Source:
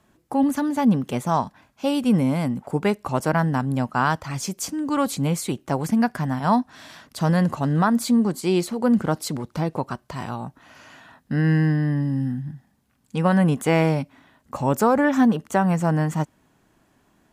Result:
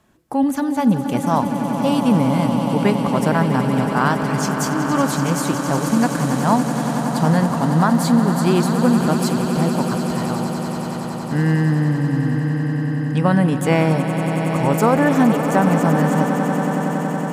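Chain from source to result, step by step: echo with a slow build-up 93 ms, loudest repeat 8, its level -12 dB; trim +2 dB

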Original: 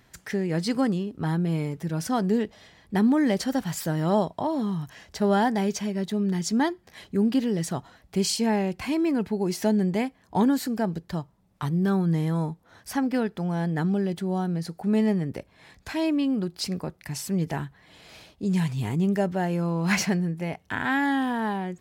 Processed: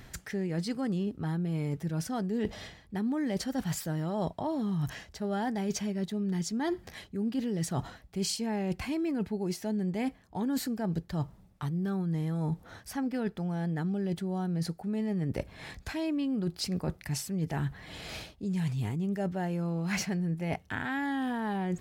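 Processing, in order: bass shelf 100 Hz +9 dB; band-stop 1 kHz, Q 15; reverse; compression 10:1, threshold -36 dBFS, peak gain reduction 20 dB; reverse; trim +7 dB

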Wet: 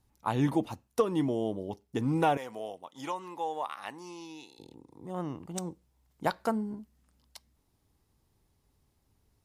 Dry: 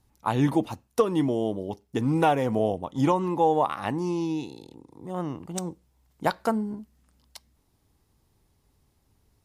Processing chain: 2.37–4.59 s: high-pass 1.5 kHz 6 dB/octave; trim -4.5 dB

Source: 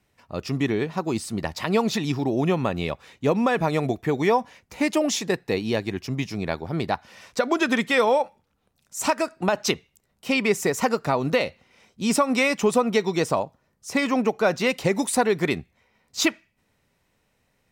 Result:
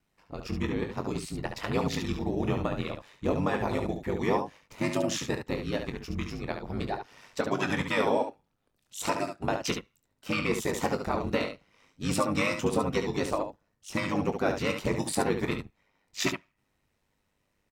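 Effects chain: ring modulator 50 Hz; harmony voices -12 st -6 dB; early reflections 23 ms -10.5 dB, 71 ms -7 dB; trim -5.5 dB

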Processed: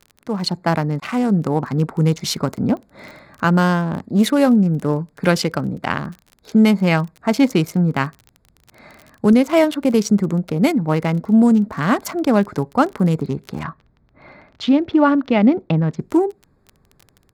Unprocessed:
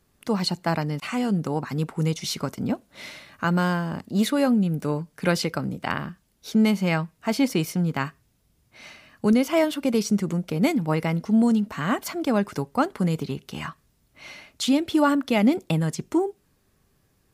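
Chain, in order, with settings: local Wiener filter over 15 samples; level rider gain up to 8 dB; crackle 22 per s -29 dBFS; 13.63–15.99 s: distance through air 240 m

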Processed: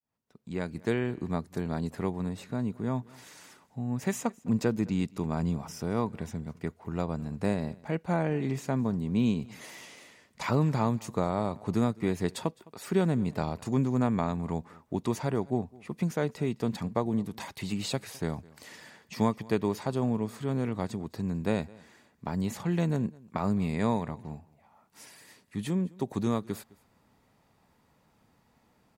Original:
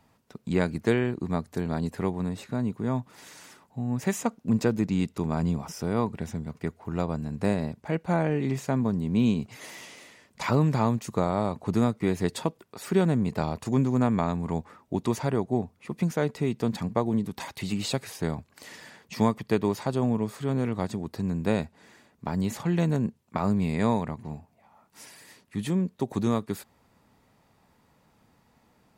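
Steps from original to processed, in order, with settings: fade-in on the opening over 1.15 s; delay 210 ms -23.5 dB; trim -3 dB

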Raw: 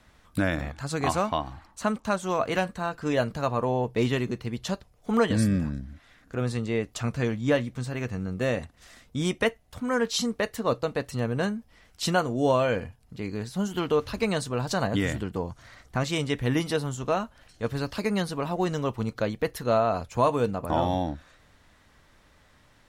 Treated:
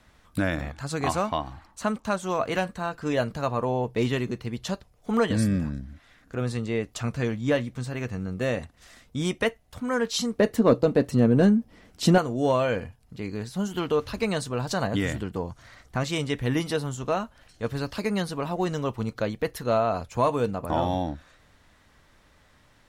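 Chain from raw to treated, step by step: 10.38–12.18 s: peaking EQ 260 Hz +13 dB 2.4 oct; saturation -8 dBFS, distortion -22 dB

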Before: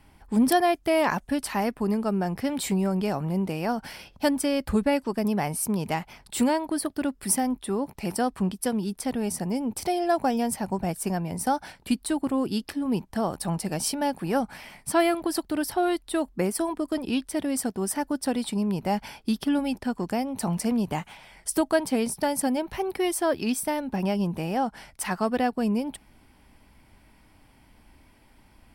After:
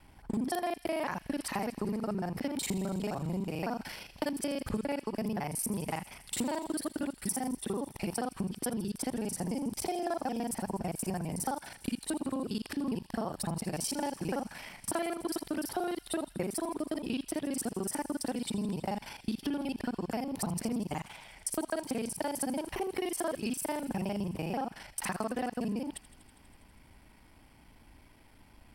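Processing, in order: time reversed locally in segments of 37 ms; compression, threshold -29 dBFS, peak gain reduction 11.5 dB; feedback echo behind a high-pass 81 ms, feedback 82%, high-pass 2.4 kHz, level -16 dB; trim -1.5 dB

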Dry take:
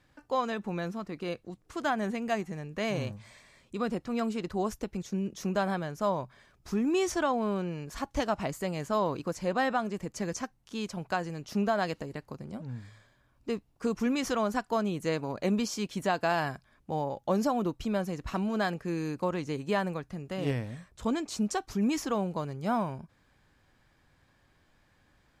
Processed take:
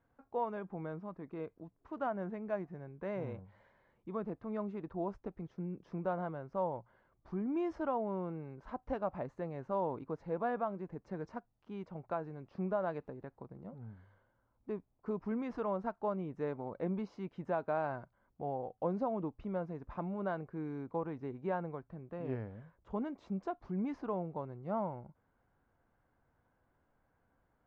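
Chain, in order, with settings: wide varispeed 0.918×; low-pass 1 kHz 12 dB/octave; bass shelf 390 Hz -7.5 dB; trim -3 dB

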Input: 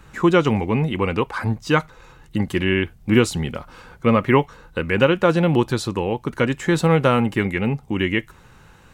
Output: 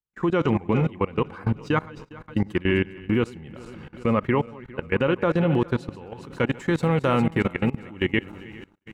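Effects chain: backward echo that repeats 203 ms, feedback 65%, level -11 dB; treble shelf 3.8 kHz -11.5 dB, from 6.12 s -4.5 dB; gate -35 dBFS, range -37 dB; level held to a coarse grid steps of 20 dB

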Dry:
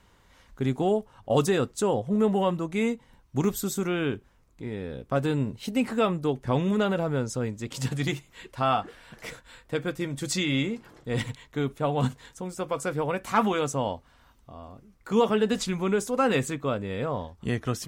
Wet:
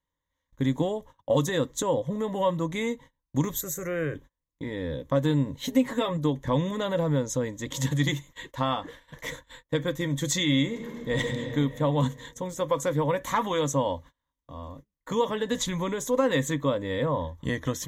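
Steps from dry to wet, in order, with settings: 3.61–4.15 s: static phaser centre 930 Hz, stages 6; 5.61–6.17 s: comb 7.4 ms, depth 66%; 10.67–11.20 s: reverb throw, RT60 2.8 s, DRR 1.5 dB; 17.02–17.45 s: dynamic bell 5.5 kHz, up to -6 dB, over -59 dBFS, Q 0.78; compression 2.5:1, threshold -26 dBFS, peak gain reduction 7 dB; rippled EQ curve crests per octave 1.1, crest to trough 12 dB; gate -46 dBFS, range -30 dB; trim +1.5 dB

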